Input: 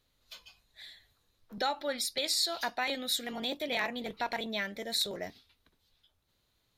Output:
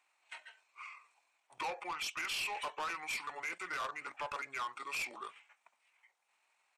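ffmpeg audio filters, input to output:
-af "highpass=f=1.4k:t=q:w=2.1,asoftclip=type=tanh:threshold=-34dB,asetrate=26990,aresample=44100,atempo=1.63392"

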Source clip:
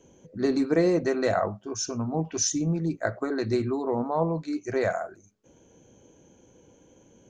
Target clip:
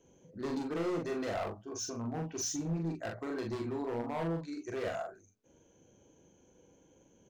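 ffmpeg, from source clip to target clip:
-filter_complex "[0:a]bandreject=f=60:t=h:w=6,bandreject=f=120:t=h:w=6,bandreject=f=180:t=h:w=6,bandreject=f=240:t=h:w=6,bandreject=f=300:t=h:w=6,asoftclip=type=hard:threshold=-25dB,asplit=2[a][b];[b]adelay=42,volume=-3.5dB[c];[a][c]amix=inputs=2:normalize=0,volume=-8.5dB"

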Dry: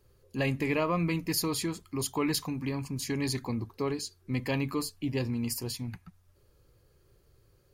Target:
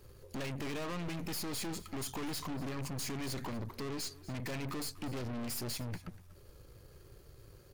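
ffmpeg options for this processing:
-af "acompressor=threshold=-33dB:ratio=6,aeval=exprs='(tanh(282*val(0)+0.65)-tanh(0.65))/282':c=same,aecho=1:1:242:0.112,volume=11dB"

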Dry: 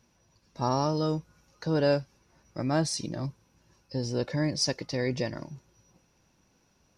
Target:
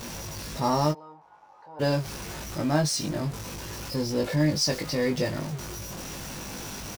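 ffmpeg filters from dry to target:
-filter_complex "[0:a]aeval=exprs='val(0)+0.5*0.0224*sgn(val(0))':c=same,asplit=3[a][b][c];[a]afade=t=out:st=0.91:d=0.02[d];[b]bandpass=f=860:t=q:w=9.2:csg=0,afade=t=in:st=0.91:d=0.02,afade=t=out:st=1.79:d=0.02[e];[c]afade=t=in:st=1.79:d=0.02[f];[d][e][f]amix=inputs=3:normalize=0,asplit=2[g][h];[h]adelay=20,volume=-4dB[i];[g][i]amix=inputs=2:normalize=0"

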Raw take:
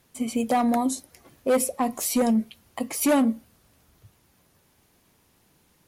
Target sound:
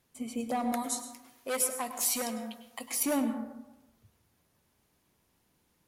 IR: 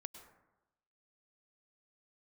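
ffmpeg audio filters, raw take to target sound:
-filter_complex "[0:a]asettb=1/sr,asplit=3[a][b][c];[a]atrim=end=0.724[d];[b]atrim=start=0.72:end=3.03,asetpts=PTS-STARTPTS,afade=t=in:d=0.004:c=qsin,afade=t=out:st=2.306:d=0.004:c=qsin,tiltshelf=f=780:g=-9[e];[c]atrim=start=3.026[f];[d][e]acrossfade=d=0.004:c1=hsin:c2=qsin[g];[g][f]acrossfade=d=0.004:c1=qsin:c2=hsin[h];[1:a]atrim=start_sample=2205[i];[h][i]afir=irnorm=-1:irlink=0,volume=-4.5dB"

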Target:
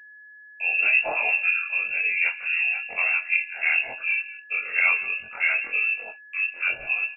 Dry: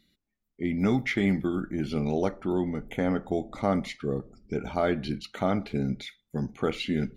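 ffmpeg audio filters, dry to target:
-filter_complex "[0:a]afftfilt=real='re':imag='-im':win_size=2048:overlap=0.75,acrossover=split=350[a][b];[a]equalizer=f=78:t=o:w=1.4:g=13[c];[b]dynaudnorm=f=120:g=13:m=3.5dB[d];[c][d]amix=inputs=2:normalize=0,asplit=2[e][f];[f]adelay=178,lowpass=f=1.6k:p=1,volume=-16dB,asplit=2[g][h];[h]adelay=178,lowpass=f=1.6k:p=1,volume=0.17[i];[e][g][i]amix=inputs=3:normalize=0,lowpass=f=2.4k:t=q:w=0.5098,lowpass=f=2.4k:t=q:w=0.6013,lowpass=f=2.4k:t=q:w=0.9,lowpass=f=2.4k:t=q:w=2.563,afreqshift=-2800,agate=range=-38dB:threshold=-46dB:ratio=16:detection=peak,flanger=delay=3.6:depth=9.6:regen=-30:speed=0.7:shape=sinusoidal,aeval=exprs='val(0)+0.00251*sin(2*PI*1700*n/s)':c=same,volume=7.5dB"

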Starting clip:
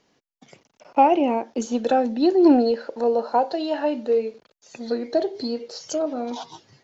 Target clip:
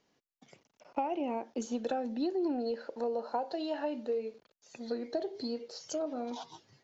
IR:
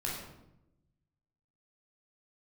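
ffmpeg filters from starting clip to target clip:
-af "acompressor=threshold=-20dB:ratio=10,volume=-9dB"

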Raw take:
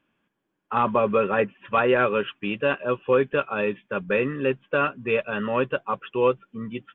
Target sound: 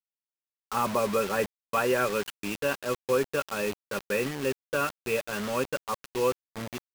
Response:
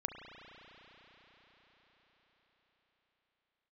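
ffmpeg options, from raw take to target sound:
-af "acrusher=bits=4:mix=0:aa=0.000001,volume=-5.5dB"

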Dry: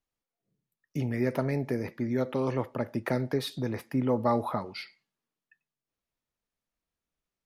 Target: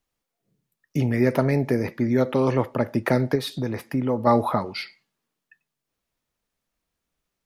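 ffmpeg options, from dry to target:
-filter_complex "[0:a]asettb=1/sr,asplit=3[a][b][c];[a]atrim=end=3.354[d];[b]atrim=start=3.35:end=4.27,asetpts=PTS-STARTPTS,afade=t=in:d=0.004:c=qsin,afade=t=out:st=0.916:d=0.004:c=qsin,acompressor=threshold=-37dB:ratio=1.5[e];[c]atrim=start=4.266[f];[d][e]acrossfade=d=0.004:c1=hsin:c2=qsin[g];[g][f]acrossfade=d=0.004:c1=qsin:c2=hsin,volume=8dB"

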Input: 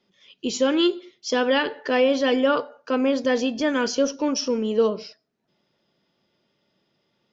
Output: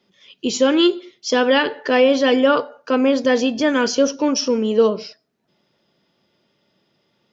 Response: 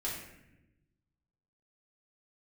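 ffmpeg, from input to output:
-af "highpass=40,volume=5dB"

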